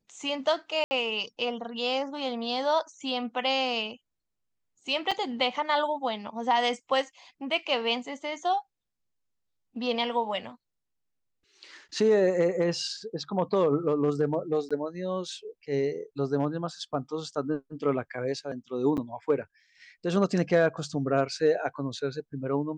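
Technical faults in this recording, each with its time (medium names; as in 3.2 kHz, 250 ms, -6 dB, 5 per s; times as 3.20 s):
0.84–0.91 s: dropout 70 ms
5.11–5.12 s: dropout 5.4 ms
14.69–14.71 s: dropout 16 ms
18.97–18.98 s: dropout 8.1 ms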